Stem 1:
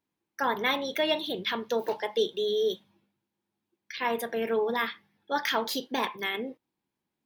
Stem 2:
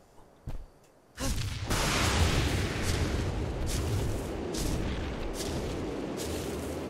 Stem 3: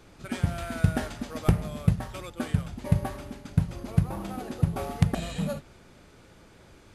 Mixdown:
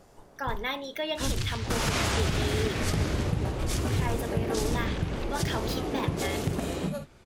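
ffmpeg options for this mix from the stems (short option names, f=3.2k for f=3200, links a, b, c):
-filter_complex "[0:a]volume=-5dB[a];[1:a]volume=2.5dB[b];[2:a]adelay=1450,volume=-3dB[c];[a][b][c]amix=inputs=3:normalize=0,alimiter=limit=-17dB:level=0:latency=1:release=95"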